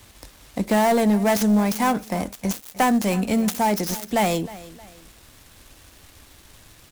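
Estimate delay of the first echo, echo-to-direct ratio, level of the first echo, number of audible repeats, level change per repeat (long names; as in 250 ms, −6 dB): 312 ms, −18.0 dB, −18.5 dB, 2, −8.0 dB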